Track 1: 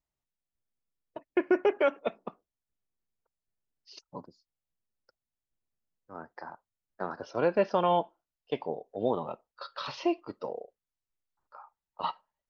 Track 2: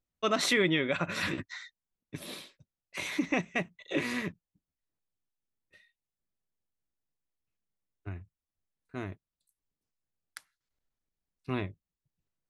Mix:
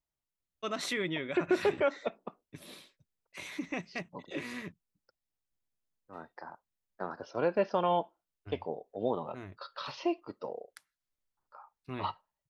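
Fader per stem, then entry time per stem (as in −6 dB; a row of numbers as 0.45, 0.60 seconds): −3.0, −7.5 decibels; 0.00, 0.40 seconds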